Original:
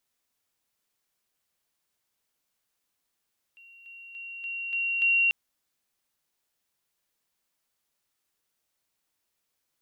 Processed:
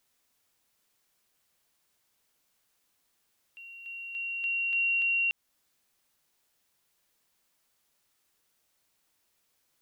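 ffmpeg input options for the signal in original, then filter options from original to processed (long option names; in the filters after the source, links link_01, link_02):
-f lavfi -i "aevalsrc='pow(10,(-49.5+6*floor(t/0.29))/20)*sin(2*PI*2750*t)':duration=1.74:sample_rate=44100"
-filter_complex "[0:a]asplit=2[link_01][link_02];[link_02]acompressor=threshold=-36dB:ratio=6,volume=-0.5dB[link_03];[link_01][link_03]amix=inputs=2:normalize=0,alimiter=limit=-24dB:level=0:latency=1:release=83"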